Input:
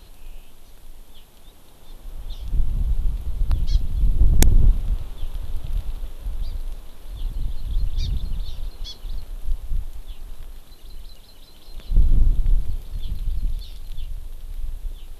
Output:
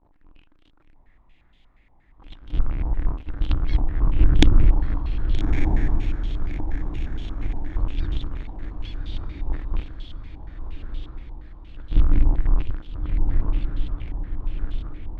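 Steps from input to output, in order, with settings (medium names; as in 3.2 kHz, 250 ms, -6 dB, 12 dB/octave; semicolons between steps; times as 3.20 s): jump at every zero crossing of -26.5 dBFS; peaking EQ 300 Hz +13 dB 0.34 oct; expander -15 dBFS; echo that smears into a reverb 1251 ms, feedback 48%, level -4.5 dB; spectral freeze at 0.98 s, 1.22 s; step-sequenced low-pass 8.5 Hz 890–3200 Hz; trim -1 dB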